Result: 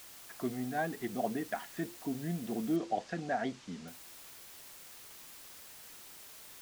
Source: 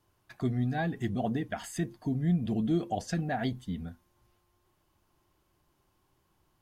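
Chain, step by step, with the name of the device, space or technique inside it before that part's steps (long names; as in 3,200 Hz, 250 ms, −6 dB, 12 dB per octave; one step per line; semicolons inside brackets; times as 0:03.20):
wax cylinder (band-pass filter 310–2,200 Hz; tape wow and flutter; white noise bed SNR 13 dB)
0:02.76–0:03.88: low-pass filter 6,900 Hz 24 dB per octave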